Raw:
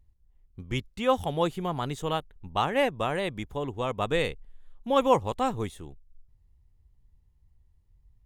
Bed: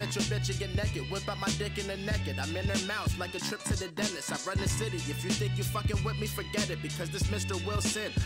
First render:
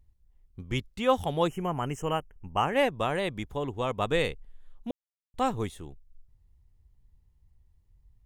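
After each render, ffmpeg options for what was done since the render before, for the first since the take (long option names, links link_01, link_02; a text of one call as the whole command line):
ffmpeg -i in.wav -filter_complex "[0:a]asettb=1/sr,asplit=3[link_01][link_02][link_03];[link_01]atrim=end=1.484[link_04];[link_02]atrim=start=1.48:end=2.73,asetpts=PTS-STARTPTS,afade=type=in:duration=0.004:curve=qsin,afade=type=out:start_time=1.246:duration=0.004:curve=qsin,asuperstop=centerf=4000:order=20:qfactor=2[link_05];[link_03]atrim=start=2.726[link_06];[link_04][link_05]acrossfade=duration=0.004:curve1=hsin:curve2=qsin[link_07];[link_07][link_06]acrossfade=duration=0.004:curve1=qsin:curve2=hsin,asplit=3[link_08][link_09][link_10];[link_08]atrim=end=4.91,asetpts=PTS-STARTPTS,afade=type=out:start_time=4.906:duration=0.004:curve=hsin[link_11];[link_09]atrim=start=4.91:end=5.34,asetpts=PTS-STARTPTS,volume=0[link_12];[link_10]atrim=start=5.34,asetpts=PTS-STARTPTS,afade=type=in:duration=0.004:curve=hsin[link_13];[link_11][link_12][link_13]concat=n=3:v=0:a=1" out.wav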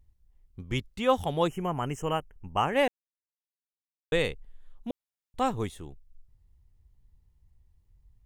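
ffmpeg -i in.wav -filter_complex "[0:a]asplit=3[link_01][link_02][link_03];[link_01]atrim=end=2.88,asetpts=PTS-STARTPTS,afade=type=out:start_time=2.876:duration=0.004:curve=hsin[link_04];[link_02]atrim=start=2.88:end=4.12,asetpts=PTS-STARTPTS,volume=0[link_05];[link_03]atrim=start=4.12,asetpts=PTS-STARTPTS,afade=type=in:duration=0.004:curve=hsin[link_06];[link_04][link_05][link_06]concat=n=3:v=0:a=1" out.wav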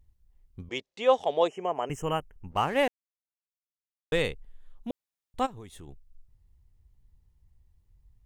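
ffmpeg -i in.wav -filter_complex "[0:a]asettb=1/sr,asplit=3[link_01][link_02][link_03];[link_01]atrim=end=0.694[link_04];[link_02]atrim=start=0.69:end=1.9,asetpts=PTS-STARTPTS,afade=type=in:duration=0.004:curve=qsin,afade=type=out:start_time=1.206:duration=0.004:curve=qsin,highpass=410,equalizer=frequency=440:width_type=q:width=4:gain=7,equalizer=frequency=640:width_type=q:width=4:gain=8,equalizer=frequency=1400:width_type=q:width=4:gain=-7,lowpass=frequency=7000:width=0.5412,lowpass=frequency=7000:width=1.3066[link_05];[link_03]atrim=start=1.896[link_06];[link_04][link_05]acrossfade=duration=0.004:curve1=hsin:curve2=qsin[link_07];[link_07][link_06]acrossfade=duration=0.004:curve1=qsin:curve2=hsin,asettb=1/sr,asplit=3[link_08][link_09][link_10];[link_08]atrim=end=2.514[link_11];[link_09]atrim=start=2.51:end=4.21,asetpts=PTS-STARTPTS,afade=type=in:duration=0.004:curve=qsin,afade=type=out:start_time=1.696:duration=0.004:curve=qsin,aeval=exprs='sgn(val(0))*max(abs(val(0))-0.00422,0)':channel_layout=same[link_12];[link_10]atrim=start=4.206[link_13];[link_11][link_12]acrossfade=duration=0.004:curve1=hsin:curve2=qsin[link_14];[link_14][link_13]acrossfade=duration=0.004:curve1=qsin:curve2=hsin,asplit=3[link_15][link_16][link_17];[link_15]afade=type=out:start_time=5.45:duration=0.02[link_18];[link_16]acompressor=threshold=-41dB:ratio=6:attack=3.2:release=140:knee=1:detection=peak,afade=type=in:start_time=5.45:duration=0.02,afade=type=out:start_time=5.87:duration=0.02[link_19];[link_17]afade=type=in:start_time=5.87:duration=0.02[link_20];[link_18][link_19][link_20]amix=inputs=3:normalize=0" out.wav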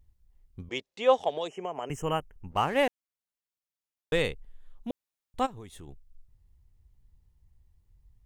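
ffmpeg -i in.wav -filter_complex "[0:a]asettb=1/sr,asplit=3[link_01][link_02][link_03];[link_01]atrim=end=1.294[link_04];[link_02]atrim=start=1.29:end=1.97,asetpts=PTS-STARTPTS,afade=type=in:duration=0.004:curve=qsin,afade=type=out:start_time=0.676:duration=0.004:curve=qsin,acrossover=split=150|3000[link_05][link_06][link_07];[link_06]acompressor=threshold=-29dB:ratio=6:attack=3.2:release=140:knee=2.83:detection=peak[link_08];[link_05][link_08][link_07]amix=inputs=3:normalize=0[link_09];[link_03]atrim=start=1.966[link_10];[link_04][link_09]acrossfade=duration=0.004:curve1=hsin:curve2=qsin[link_11];[link_11][link_10]acrossfade=duration=0.004:curve1=qsin:curve2=hsin" out.wav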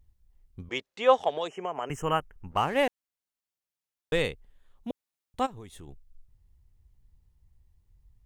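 ffmpeg -i in.wav -filter_complex "[0:a]asettb=1/sr,asplit=3[link_01][link_02][link_03];[link_01]atrim=end=0.654[link_04];[link_02]atrim=start=0.65:end=2.58,asetpts=PTS-STARTPTS,afade=type=in:duration=0.004:curve=qsin,afade=type=out:start_time=1.926:duration=0.004:curve=qsin,equalizer=frequency=1400:width=1.2:gain=6.5[link_05];[link_03]atrim=start=2.576[link_06];[link_04][link_05]acrossfade=duration=0.004:curve1=hsin:curve2=qsin[link_07];[link_07][link_06]acrossfade=duration=0.004:curve1=qsin:curve2=hsin,asettb=1/sr,asplit=3[link_08][link_09][link_10];[link_08]atrim=end=4.254[link_11];[link_09]atrim=start=4.25:end=5.52,asetpts=PTS-STARTPTS,afade=type=in:duration=0.004:curve=qsin,afade=type=out:start_time=1.266:duration=0.004:curve=qsin,highpass=frequency=44:poles=1[link_12];[link_10]atrim=start=5.516[link_13];[link_11][link_12]acrossfade=duration=0.004:curve1=hsin:curve2=qsin[link_14];[link_14][link_13]acrossfade=duration=0.004:curve1=qsin:curve2=hsin" out.wav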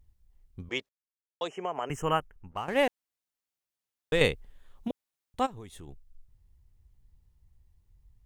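ffmpeg -i in.wav -filter_complex "[0:a]asplit=6[link_01][link_02][link_03][link_04][link_05][link_06];[link_01]atrim=end=0.89,asetpts=PTS-STARTPTS,afade=type=out:start_time=0.886:duration=0.004:curve=hsin[link_07];[link_02]atrim=start=0.89:end=1.41,asetpts=PTS-STARTPTS,volume=0[link_08];[link_03]atrim=start=1.41:end=2.68,asetpts=PTS-STARTPTS,afade=type=in:duration=0.004:curve=hsin,afade=type=out:start_time=0.71:duration=0.56:silence=0.237137[link_09];[link_04]atrim=start=2.68:end=4.212,asetpts=PTS-STARTPTS,afade=type=in:duration=0.004:curve=hsin:silence=0.237137[link_10];[link_05]atrim=start=4.208:end=4.882,asetpts=PTS-STARTPTS,volume=6dB[link_11];[link_06]atrim=start=4.878[link_12];[link_07][link_08][link_09][link_10]concat=n=4:v=0:a=1[link_13];[link_13][link_11]acrossfade=duration=0.004:curve1=hsin:curve2=hsin[link_14];[link_14][link_12]acrossfade=duration=0.004:curve1=hsin:curve2=hsin" out.wav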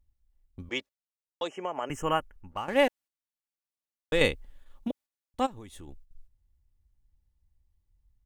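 ffmpeg -i in.wav -af "agate=range=-9dB:threshold=-51dB:ratio=16:detection=peak,aecho=1:1:3.5:0.35" out.wav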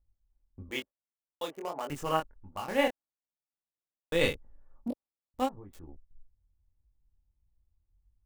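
ffmpeg -i in.wav -filter_complex "[0:a]acrossover=split=1400[link_01][link_02];[link_02]acrusher=bits=6:mix=0:aa=0.000001[link_03];[link_01][link_03]amix=inputs=2:normalize=0,flanger=delay=20:depth=5.3:speed=1.6" out.wav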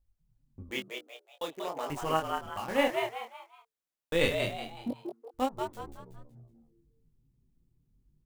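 ffmpeg -i in.wav -filter_complex "[0:a]asplit=5[link_01][link_02][link_03][link_04][link_05];[link_02]adelay=186,afreqshift=110,volume=-5dB[link_06];[link_03]adelay=372,afreqshift=220,volume=-13.9dB[link_07];[link_04]adelay=558,afreqshift=330,volume=-22.7dB[link_08];[link_05]adelay=744,afreqshift=440,volume=-31.6dB[link_09];[link_01][link_06][link_07][link_08][link_09]amix=inputs=5:normalize=0" out.wav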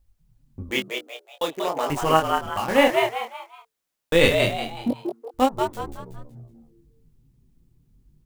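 ffmpeg -i in.wav -af "volume=10.5dB,alimiter=limit=-3dB:level=0:latency=1" out.wav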